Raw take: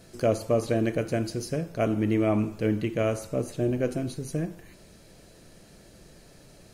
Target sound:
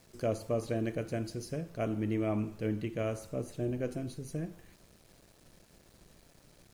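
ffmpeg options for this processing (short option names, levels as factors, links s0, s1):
-af "lowshelf=f=130:g=3.5,aeval=exprs='val(0)*gte(abs(val(0)),0.00335)':c=same,volume=0.376"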